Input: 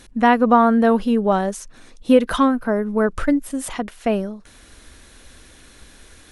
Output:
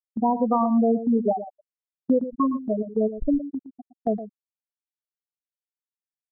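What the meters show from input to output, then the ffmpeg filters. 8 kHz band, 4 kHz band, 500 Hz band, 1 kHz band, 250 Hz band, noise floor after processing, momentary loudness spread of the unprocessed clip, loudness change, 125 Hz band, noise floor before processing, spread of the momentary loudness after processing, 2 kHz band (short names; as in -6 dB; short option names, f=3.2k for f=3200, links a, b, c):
under -40 dB, under -40 dB, -6.5 dB, -8.0 dB, -5.0 dB, under -85 dBFS, 13 LU, -5.5 dB, n/a, -48 dBFS, 14 LU, under -40 dB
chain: -af "afftfilt=real='re*gte(hypot(re,im),0.794)':imag='im*gte(hypot(re,im),0.794)':win_size=1024:overlap=0.75,alimiter=limit=-10.5dB:level=0:latency=1:release=287,agate=range=-8dB:threshold=-28dB:ratio=16:detection=peak,asuperstop=centerf=2500:order=4:qfactor=2.5,aecho=1:1:115:0.237,volume=-2dB"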